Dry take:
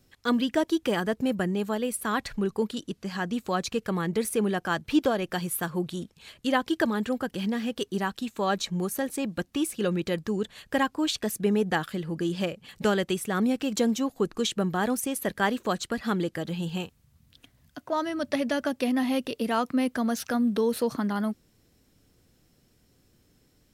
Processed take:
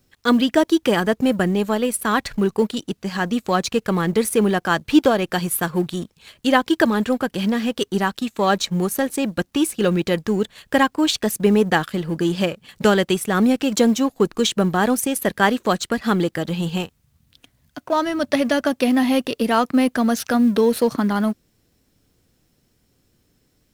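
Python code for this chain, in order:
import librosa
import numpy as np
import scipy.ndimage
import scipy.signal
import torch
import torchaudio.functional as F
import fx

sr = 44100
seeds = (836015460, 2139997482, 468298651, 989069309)

y = fx.law_mismatch(x, sr, coded='A')
y = y * 10.0 ** (9.0 / 20.0)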